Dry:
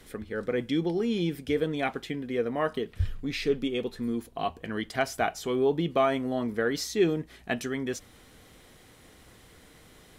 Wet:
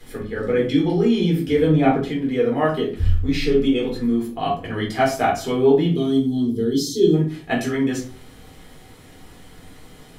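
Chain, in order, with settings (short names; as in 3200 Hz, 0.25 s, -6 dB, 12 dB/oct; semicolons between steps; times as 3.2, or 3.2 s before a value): 1.67–2.07 tilt shelf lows +6 dB, about 1100 Hz; 5.92–7.13 spectral gain 460–3000 Hz -22 dB; shoebox room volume 260 m³, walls furnished, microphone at 4 m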